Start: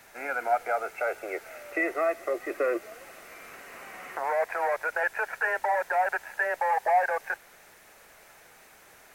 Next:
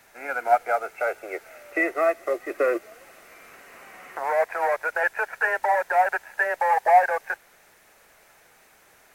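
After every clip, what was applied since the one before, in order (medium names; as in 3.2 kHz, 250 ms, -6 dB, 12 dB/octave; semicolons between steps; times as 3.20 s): upward expansion 1.5:1, over -38 dBFS; trim +7.5 dB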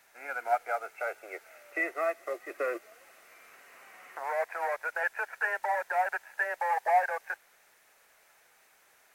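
bass shelf 390 Hz -11 dB; trim -6 dB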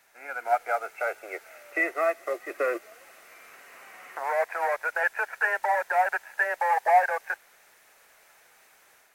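level rider gain up to 5 dB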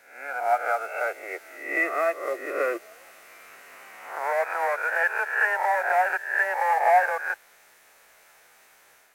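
reverse spectral sustain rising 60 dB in 0.61 s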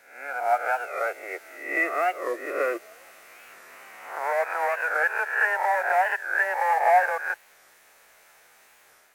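warped record 45 rpm, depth 160 cents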